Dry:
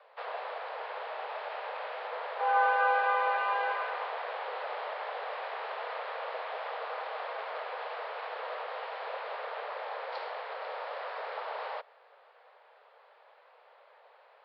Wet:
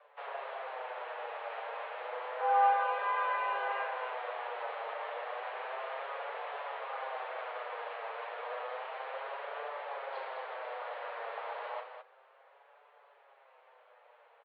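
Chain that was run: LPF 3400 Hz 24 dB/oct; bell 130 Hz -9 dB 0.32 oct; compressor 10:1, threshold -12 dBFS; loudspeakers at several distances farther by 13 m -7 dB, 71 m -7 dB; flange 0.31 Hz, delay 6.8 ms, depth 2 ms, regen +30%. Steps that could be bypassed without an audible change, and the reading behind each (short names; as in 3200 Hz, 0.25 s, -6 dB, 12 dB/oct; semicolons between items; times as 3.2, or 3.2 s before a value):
bell 130 Hz: input band starts at 360 Hz; compressor, threshold -12 dBFS: input peak -15.5 dBFS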